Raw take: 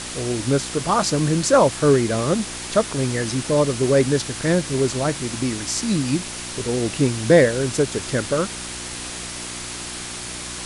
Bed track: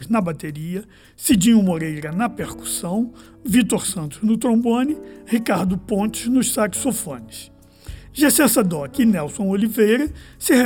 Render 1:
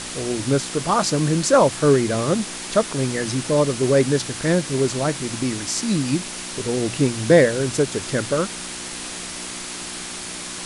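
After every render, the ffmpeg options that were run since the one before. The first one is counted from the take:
-af "bandreject=f=60:t=h:w=4,bandreject=f=120:t=h:w=4"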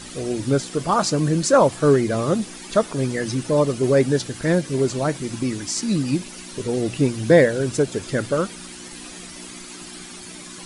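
-af "afftdn=nr=11:nf=-32"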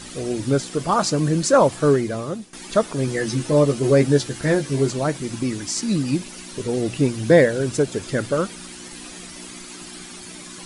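-filter_complex "[0:a]asettb=1/sr,asplit=3[a][b][c];[a]atrim=end=3.064[d];[b]atrim=start=3.06:end=4.91,asetpts=PTS-STARTPTS,afade=t=in:d=0.004:c=qsin,afade=t=out:st=1.846:d=0.004:c=qsin,asplit=2[e][f];[f]adelay=14,volume=-4.5dB[g];[e][g]amix=inputs=2:normalize=0,atrim=end_sample=81585[h];[c]atrim=start=4.906[i];[d][h]acrossfade=d=0.004:c1=hsin:c2=qsin[j];[j][i]acrossfade=d=0.004:c1=qsin:c2=hsin,asplit=2[k][l];[k]atrim=end=2.53,asetpts=PTS-STARTPTS,afade=t=out:st=1.81:d=0.72:silence=0.158489[m];[l]atrim=start=2.53,asetpts=PTS-STARTPTS,afade=t=in:d=0.004:c=hsin:silence=0.158489[n];[m][n]concat=n=2:v=0:a=1"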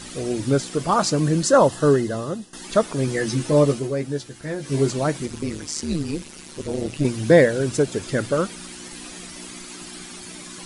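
-filter_complex "[0:a]asettb=1/sr,asplit=3[a][b][c];[a]atrim=end=1.434[d];[b]atrim=start=1.43:end=2.64,asetpts=PTS-STARTPTS,afade=t=in:d=0.004:c=qsin,afade=t=out:st=1.206:d=0.004:c=qsin,asuperstop=centerf=2300:order=20:qfactor=5.9[e];[c]atrim=start=2.636[f];[d][e]acrossfade=d=0.004:c1=hsin:c2=qsin[g];[g][f]acrossfade=d=0.004:c1=qsin:c2=hsin,asettb=1/sr,asplit=3[h][i][j];[h]atrim=end=5.264[k];[i]atrim=start=5.26:end=7.05,asetpts=PTS-STARTPTS,afade=t=in:d=0.004:c=qsin,afade=t=out:st=1.786:d=0.004:c=qsin,tremolo=f=150:d=0.824[l];[j]atrim=start=7.046[m];[k][l]acrossfade=d=0.004:c1=hsin:c2=qsin[n];[n][m]acrossfade=d=0.004:c1=qsin:c2=hsin,asplit=3[o][p][q];[o]atrim=end=3.89,asetpts=PTS-STARTPTS,afade=t=out:st=3.72:d=0.17:silence=0.316228[r];[p]atrim=start=3.89:end=4.58,asetpts=PTS-STARTPTS,volume=-10dB[s];[q]atrim=start=4.58,asetpts=PTS-STARTPTS,afade=t=in:d=0.17:silence=0.316228[t];[r][s][t]concat=n=3:v=0:a=1"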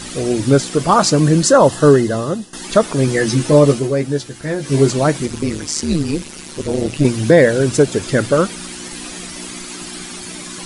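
-af "alimiter=level_in=7.5dB:limit=-1dB:release=50:level=0:latency=1"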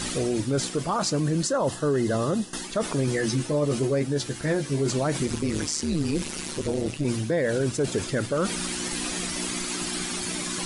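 -af "areverse,acompressor=threshold=-19dB:ratio=10,areverse,alimiter=limit=-16.5dB:level=0:latency=1:release=47"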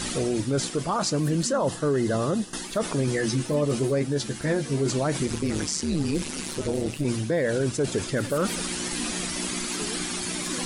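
-filter_complex "[1:a]volume=-24dB[a];[0:a][a]amix=inputs=2:normalize=0"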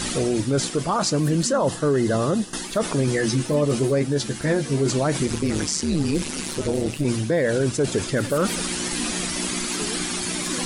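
-af "volume=3.5dB"

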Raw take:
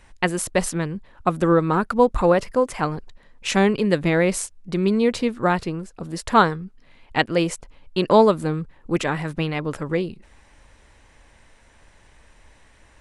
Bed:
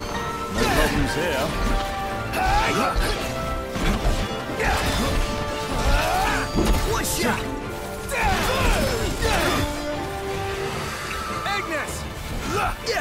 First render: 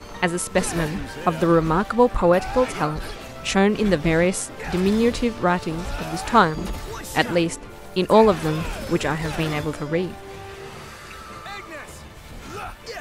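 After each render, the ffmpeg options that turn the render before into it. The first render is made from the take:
-filter_complex "[1:a]volume=-10dB[a];[0:a][a]amix=inputs=2:normalize=0"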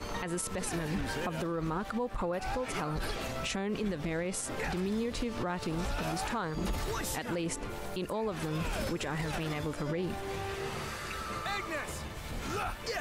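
-af "acompressor=threshold=-24dB:ratio=6,alimiter=level_in=1dB:limit=-24dB:level=0:latency=1:release=69,volume=-1dB"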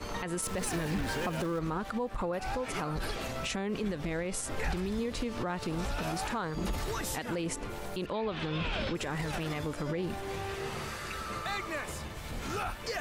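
-filter_complex "[0:a]asettb=1/sr,asplit=3[a][b][c];[a]atrim=end=0.424[d];[b]atrim=start=0.42:end=1.59,asetpts=PTS-STARTPTS,afade=t=in:d=0.004:c=qsin,afade=t=out:st=1.166:d=0.004:c=qsin,aeval=exprs='val(0)+0.5*0.00944*sgn(val(0))':c=same[e];[c]atrim=start=1.586[f];[d][e]acrossfade=d=0.004:c1=hsin:c2=qsin[g];[g][f]acrossfade=d=0.004:c1=qsin:c2=hsin,asettb=1/sr,asplit=3[h][i][j];[h]atrim=end=3.914[k];[i]atrim=start=3.91:end=4.99,asetpts=PTS-STARTPTS,afade=t=in:d=0.004:c=qsin,afade=t=out:st=1.076:d=0.004:c=qsin,asubboost=boost=8:cutoff=110[l];[j]atrim=start=4.986[m];[k][l]acrossfade=d=0.004:c1=hsin:c2=qsin[n];[n][m]acrossfade=d=0.004:c1=qsin:c2=hsin,asettb=1/sr,asplit=3[o][p][q];[o]atrim=end=8.064[r];[p]atrim=start=8.06:end=8.95,asetpts=PTS-STARTPTS,afade=t=in:d=0.004:c=qsin,afade=t=out:st=0.886:d=0.004:c=qsin,lowpass=f=3.4k:t=q:w=2.4[s];[q]atrim=start=8.946[t];[r][s]acrossfade=d=0.004:c1=hsin:c2=qsin[u];[u][t]acrossfade=d=0.004:c1=qsin:c2=hsin"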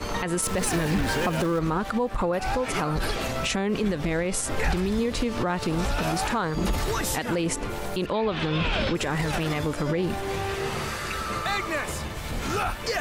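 -af "volume=8dB"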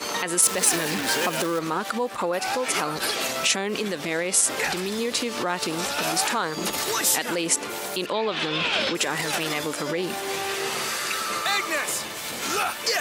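-af "highpass=270,highshelf=f=2.7k:g=10.5"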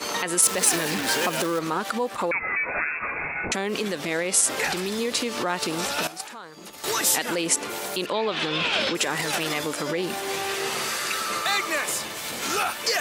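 -filter_complex "[0:a]asettb=1/sr,asplit=3[a][b][c];[a]atrim=end=2.314[d];[b]atrim=start=2.31:end=3.52,asetpts=PTS-STARTPTS,afade=t=in:d=0.004:c=qsin,afade=t=out:st=1.206:d=0.004:c=qsin,lowpass=f=2.4k:t=q:w=0.5098,lowpass=f=2.4k:t=q:w=0.6013,lowpass=f=2.4k:t=q:w=0.9,lowpass=f=2.4k:t=q:w=2.563,afreqshift=-2800[e];[c]atrim=start=3.516[f];[d][e]acrossfade=d=0.004:c1=hsin:c2=qsin[g];[g][f]acrossfade=d=0.004:c1=qsin:c2=hsin,asettb=1/sr,asplit=3[h][i][j];[h]atrim=end=6.074[k];[i]atrim=start=6.07:end=6.84,asetpts=PTS-STARTPTS,afade=t=in:d=0.004:c=qsin,afade=t=out:st=0.766:d=0.004:c=qsin,agate=range=-15dB:threshold=-20dB:ratio=16:release=100:detection=peak[l];[j]atrim=start=6.836[m];[k][l]acrossfade=d=0.004:c1=hsin:c2=qsin[n];[n][m]acrossfade=d=0.004:c1=qsin:c2=hsin"

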